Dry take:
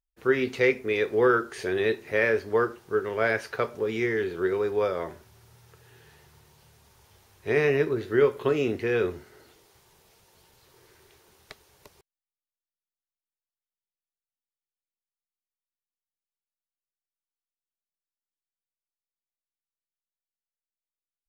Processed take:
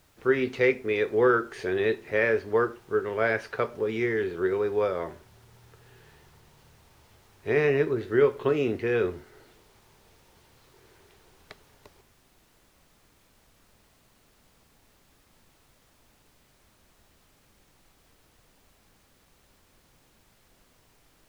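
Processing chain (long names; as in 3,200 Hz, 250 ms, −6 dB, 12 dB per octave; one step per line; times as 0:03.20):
high-shelf EQ 6,000 Hz −11.5 dB
background noise pink −62 dBFS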